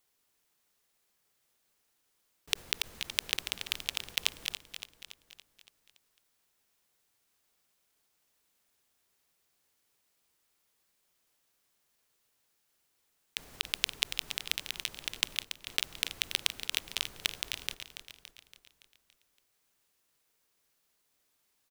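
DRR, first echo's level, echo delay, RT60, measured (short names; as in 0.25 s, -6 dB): none, -10.0 dB, 0.283 s, none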